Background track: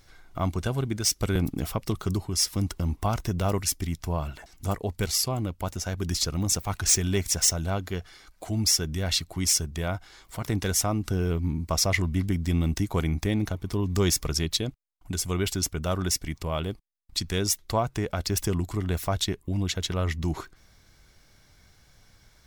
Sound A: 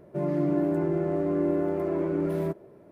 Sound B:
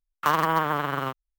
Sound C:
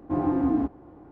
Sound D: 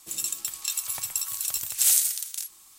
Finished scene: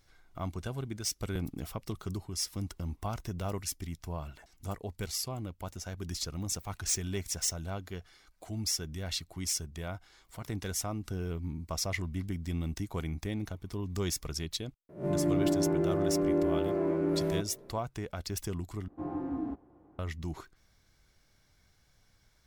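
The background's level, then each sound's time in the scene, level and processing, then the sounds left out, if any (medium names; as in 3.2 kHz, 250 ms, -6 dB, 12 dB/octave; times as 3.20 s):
background track -9.5 dB
14.89 s: add A -3 dB + reverse spectral sustain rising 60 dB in 0.34 s
18.88 s: replace with C -11.5 dB
not used: B, D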